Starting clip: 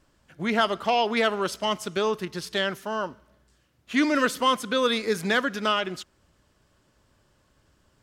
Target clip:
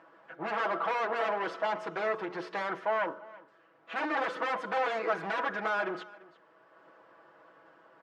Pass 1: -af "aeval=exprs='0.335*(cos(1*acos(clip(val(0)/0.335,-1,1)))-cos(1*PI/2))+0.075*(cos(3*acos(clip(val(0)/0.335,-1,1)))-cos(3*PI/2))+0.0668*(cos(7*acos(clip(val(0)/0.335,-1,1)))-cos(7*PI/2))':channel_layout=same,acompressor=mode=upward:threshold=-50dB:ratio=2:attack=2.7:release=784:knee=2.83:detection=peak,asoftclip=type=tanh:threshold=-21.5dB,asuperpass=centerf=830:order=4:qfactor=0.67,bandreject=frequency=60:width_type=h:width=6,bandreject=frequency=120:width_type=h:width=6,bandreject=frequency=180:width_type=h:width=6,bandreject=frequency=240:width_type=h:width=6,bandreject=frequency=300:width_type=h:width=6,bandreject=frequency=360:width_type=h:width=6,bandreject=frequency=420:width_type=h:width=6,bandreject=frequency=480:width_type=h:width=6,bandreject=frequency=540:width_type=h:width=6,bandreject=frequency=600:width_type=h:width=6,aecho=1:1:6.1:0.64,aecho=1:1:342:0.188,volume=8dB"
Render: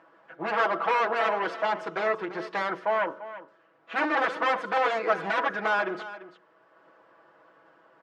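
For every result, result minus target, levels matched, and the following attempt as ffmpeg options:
echo-to-direct +6.5 dB; soft clipping: distortion −6 dB
-af "aeval=exprs='0.335*(cos(1*acos(clip(val(0)/0.335,-1,1)))-cos(1*PI/2))+0.075*(cos(3*acos(clip(val(0)/0.335,-1,1)))-cos(3*PI/2))+0.0668*(cos(7*acos(clip(val(0)/0.335,-1,1)))-cos(7*PI/2))':channel_layout=same,acompressor=mode=upward:threshold=-50dB:ratio=2:attack=2.7:release=784:knee=2.83:detection=peak,asoftclip=type=tanh:threshold=-21.5dB,asuperpass=centerf=830:order=4:qfactor=0.67,bandreject=frequency=60:width_type=h:width=6,bandreject=frequency=120:width_type=h:width=6,bandreject=frequency=180:width_type=h:width=6,bandreject=frequency=240:width_type=h:width=6,bandreject=frequency=300:width_type=h:width=6,bandreject=frequency=360:width_type=h:width=6,bandreject=frequency=420:width_type=h:width=6,bandreject=frequency=480:width_type=h:width=6,bandreject=frequency=540:width_type=h:width=6,bandreject=frequency=600:width_type=h:width=6,aecho=1:1:6.1:0.64,aecho=1:1:342:0.0891,volume=8dB"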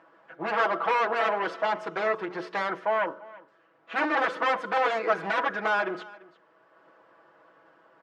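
soft clipping: distortion −6 dB
-af "aeval=exprs='0.335*(cos(1*acos(clip(val(0)/0.335,-1,1)))-cos(1*PI/2))+0.075*(cos(3*acos(clip(val(0)/0.335,-1,1)))-cos(3*PI/2))+0.0668*(cos(7*acos(clip(val(0)/0.335,-1,1)))-cos(7*PI/2))':channel_layout=same,acompressor=mode=upward:threshold=-50dB:ratio=2:attack=2.7:release=784:knee=2.83:detection=peak,asoftclip=type=tanh:threshold=-33dB,asuperpass=centerf=830:order=4:qfactor=0.67,bandreject=frequency=60:width_type=h:width=6,bandreject=frequency=120:width_type=h:width=6,bandreject=frequency=180:width_type=h:width=6,bandreject=frequency=240:width_type=h:width=6,bandreject=frequency=300:width_type=h:width=6,bandreject=frequency=360:width_type=h:width=6,bandreject=frequency=420:width_type=h:width=6,bandreject=frequency=480:width_type=h:width=6,bandreject=frequency=540:width_type=h:width=6,bandreject=frequency=600:width_type=h:width=6,aecho=1:1:6.1:0.64,aecho=1:1:342:0.0891,volume=8dB"

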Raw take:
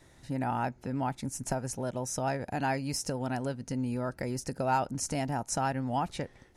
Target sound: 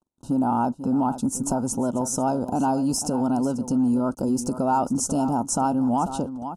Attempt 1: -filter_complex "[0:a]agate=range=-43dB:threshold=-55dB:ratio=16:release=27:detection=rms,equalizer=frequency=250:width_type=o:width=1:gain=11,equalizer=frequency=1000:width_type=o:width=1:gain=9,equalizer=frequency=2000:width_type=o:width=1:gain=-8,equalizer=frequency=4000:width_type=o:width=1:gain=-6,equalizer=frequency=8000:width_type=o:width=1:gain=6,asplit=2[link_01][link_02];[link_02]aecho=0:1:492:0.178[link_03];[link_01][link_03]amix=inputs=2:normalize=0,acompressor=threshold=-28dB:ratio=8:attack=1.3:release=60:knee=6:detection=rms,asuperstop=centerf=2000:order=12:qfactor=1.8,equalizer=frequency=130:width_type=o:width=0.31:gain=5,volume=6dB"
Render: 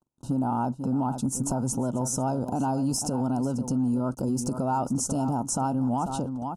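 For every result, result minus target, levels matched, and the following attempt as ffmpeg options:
125 Hz band +6.0 dB; downward compressor: peak gain reduction +5 dB
-filter_complex "[0:a]agate=range=-43dB:threshold=-55dB:ratio=16:release=27:detection=rms,equalizer=frequency=250:width_type=o:width=1:gain=11,equalizer=frequency=1000:width_type=o:width=1:gain=9,equalizer=frequency=2000:width_type=o:width=1:gain=-8,equalizer=frequency=4000:width_type=o:width=1:gain=-6,equalizer=frequency=8000:width_type=o:width=1:gain=6,asplit=2[link_01][link_02];[link_02]aecho=0:1:492:0.178[link_03];[link_01][link_03]amix=inputs=2:normalize=0,acompressor=threshold=-28dB:ratio=8:attack=1.3:release=60:knee=6:detection=rms,asuperstop=centerf=2000:order=12:qfactor=1.8,equalizer=frequency=130:width_type=o:width=0.31:gain=-4,volume=6dB"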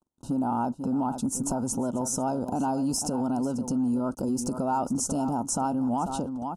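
downward compressor: peak gain reduction +5 dB
-filter_complex "[0:a]agate=range=-43dB:threshold=-55dB:ratio=16:release=27:detection=rms,equalizer=frequency=250:width_type=o:width=1:gain=11,equalizer=frequency=1000:width_type=o:width=1:gain=9,equalizer=frequency=2000:width_type=o:width=1:gain=-8,equalizer=frequency=4000:width_type=o:width=1:gain=-6,equalizer=frequency=8000:width_type=o:width=1:gain=6,asplit=2[link_01][link_02];[link_02]aecho=0:1:492:0.178[link_03];[link_01][link_03]amix=inputs=2:normalize=0,acompressor=threshold=-22dB:ratio=8:attack=1.3:release=60:knee=6:detection=rms,asuperstop=centerf=2000:order=12:qfactor=1.8,equalizer=frequency=130:width_type=o:width=0.31:gain=-4,volume=6dB"

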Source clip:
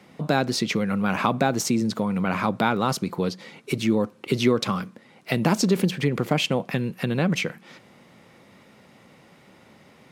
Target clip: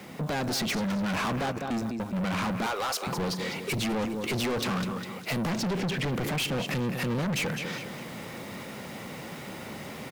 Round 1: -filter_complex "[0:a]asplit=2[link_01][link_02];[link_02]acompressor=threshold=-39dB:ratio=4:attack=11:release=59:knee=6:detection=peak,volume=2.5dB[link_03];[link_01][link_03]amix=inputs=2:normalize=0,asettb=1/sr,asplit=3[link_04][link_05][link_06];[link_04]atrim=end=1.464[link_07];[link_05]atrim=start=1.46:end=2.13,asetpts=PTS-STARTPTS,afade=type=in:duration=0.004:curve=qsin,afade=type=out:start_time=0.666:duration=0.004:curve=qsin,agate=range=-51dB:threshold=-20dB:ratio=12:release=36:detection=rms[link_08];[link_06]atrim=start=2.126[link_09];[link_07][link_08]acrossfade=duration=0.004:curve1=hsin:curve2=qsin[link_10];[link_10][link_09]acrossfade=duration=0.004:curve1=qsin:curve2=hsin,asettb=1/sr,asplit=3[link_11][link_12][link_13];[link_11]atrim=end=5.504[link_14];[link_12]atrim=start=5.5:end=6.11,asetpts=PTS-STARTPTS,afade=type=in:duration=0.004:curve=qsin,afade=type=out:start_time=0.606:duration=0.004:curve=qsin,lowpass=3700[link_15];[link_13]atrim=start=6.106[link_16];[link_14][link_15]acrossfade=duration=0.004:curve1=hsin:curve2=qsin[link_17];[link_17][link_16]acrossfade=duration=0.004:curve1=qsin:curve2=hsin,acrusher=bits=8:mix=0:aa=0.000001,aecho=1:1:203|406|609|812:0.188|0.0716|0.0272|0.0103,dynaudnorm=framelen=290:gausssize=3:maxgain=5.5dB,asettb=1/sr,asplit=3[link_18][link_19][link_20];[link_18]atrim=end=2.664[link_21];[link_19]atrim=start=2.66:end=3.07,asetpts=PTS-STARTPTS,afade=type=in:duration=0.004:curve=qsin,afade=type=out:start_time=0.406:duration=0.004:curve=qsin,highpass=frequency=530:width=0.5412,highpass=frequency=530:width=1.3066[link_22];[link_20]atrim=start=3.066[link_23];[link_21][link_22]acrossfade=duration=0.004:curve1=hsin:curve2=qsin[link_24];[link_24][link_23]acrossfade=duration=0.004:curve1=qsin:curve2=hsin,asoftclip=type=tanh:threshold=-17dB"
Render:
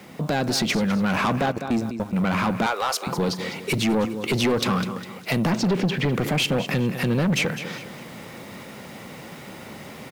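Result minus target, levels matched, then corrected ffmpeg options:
soft clipping: distortion −5 dB
-filter_complex "[0:a]asplit=2[link_01][link_02];[link_02]acompressor=threshold=-39dB:ratio=4:attack=11:release=59:knee=6:detection=peak,volume=2.5dB[link_03];[link_01][link_03]amix=inputs=2:normalize=0,asettb=1/sr,asplit=3[link_04][link_05][link_06];[link_04]atrim=end=1.464[link_07];[link_05]atrim=start=1.46:end=2.13,asetpts=PTS-STARTPTS,afade=type=in:duration=0.004:curve=qsin,afade=type=out:start_time=0.666:duration=0.004:curve=qsin,agate=range=-51dB:threshold=-20dB:ratio=12:release=36:detection=rms[link_08];[link_06]atrim=start=2.126[link_09];[link_07][link_08]acrossfade=duration=0.004:curve1=hsin:curve2=qsin[link_10];[link_10][link_09]acrossfade=duration=0.004:curve1=qsin:curve2=hsin,asettb=1/sr,asplit=3[link_11][link_12][link_13];[link_11]atrim=end=5.504[link_14];[link_12]atrim=start=5.5:end=6.11,asetpts=PTS-STARTPTS,afade=type=in:duration=0.004:curve=qsin,afade=type=out:start_time=0.606:duration=0.004:curve=qsin,lowpass=3700[link_15];[link_13]atrim=start=6.106[link_16];[link_14][link_15]acrossfade=duration=0.004:curve1=hsin:curve2=qsin[link_17];[link_17][link_16]acrossfade=duration=0.004:curve1=qsin:curve2=hsin,acrusher=bits=8:mix=0:aa=0.000001,aecho=1:1:203|406|609|812:0.188|0.0716|0.0272|0.0103,dynaudnorm=framelen=290:gausssize=3:maxgain=5.5dB,asettb=1/sr,asplit=3[link_18][link_19][link_20];[link_18]atrim=end=2.664[link_21];[link_19]atrim=start=2.66:end=3.07,asetpts=PTS-STARTPTS,afade=type=in:duration=0.004:curve=qsin,afade=type=out:start_time=0.406:duration=0.004:curve=qsin,highpass=frequency=530:width=0.5412,highpass=frequency=530:width=1.3066[link_22];[link_20]atrim=start=3.066[link_23];[link_21][link_22]acrossfade=duration=0.004:curve1=hsin:curve2=qsin[link_24];[link_24][link_23]acrossfade=duration=0.004:curve1=qsin:curve2=hsin,asoftclip=type=tanh:threshold=-27dB"

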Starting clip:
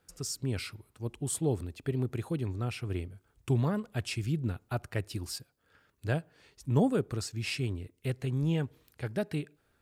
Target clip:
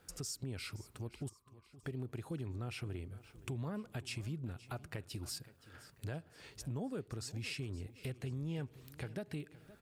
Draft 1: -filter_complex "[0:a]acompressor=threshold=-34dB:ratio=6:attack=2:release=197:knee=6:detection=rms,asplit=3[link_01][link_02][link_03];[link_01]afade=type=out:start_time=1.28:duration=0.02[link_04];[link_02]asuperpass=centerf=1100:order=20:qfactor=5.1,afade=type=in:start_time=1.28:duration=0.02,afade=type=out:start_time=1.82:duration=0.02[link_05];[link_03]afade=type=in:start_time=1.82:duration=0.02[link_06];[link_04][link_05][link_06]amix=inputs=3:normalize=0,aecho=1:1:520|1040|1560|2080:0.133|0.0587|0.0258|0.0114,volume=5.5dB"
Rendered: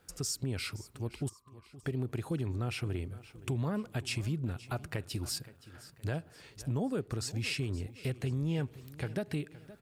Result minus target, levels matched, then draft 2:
downward compressor: peak gain reduction −7.5 dB
-filter_complex "[0:a]acompressor=threshold=-43dB:ratio=6:attack=2:release=197:knee=6:detection=rms,asplit=3[link_01][link_02][link_03];[link_01]afade=type=out:start_time=1.28:duration=0.02[link_04];[link_02]asuperpass=centerf=1100:order=20:qfactor=5.1,afade=type=in:start_time=1.28:duration=0.02,afade=type=out:start_time=1.82:duration=0.02[link_05];[link_03]afade=type=in:start_time=1.82:duration=0.02[link_06];[link_04][link_05][link_06]amix=inputs=3:normalize=0,aecho=1:1:520|1040|1560|2080:0.133|0.0587|0.0258|0.0114,volume=5.5dB"

